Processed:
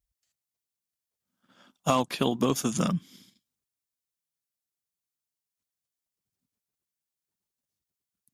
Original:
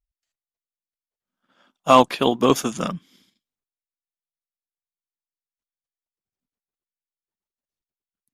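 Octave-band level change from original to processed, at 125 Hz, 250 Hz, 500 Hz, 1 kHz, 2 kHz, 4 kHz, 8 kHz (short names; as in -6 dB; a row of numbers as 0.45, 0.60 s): 0.0, -5.0, -10.0, -11.5, -8.5, -7.5, -2.0 dB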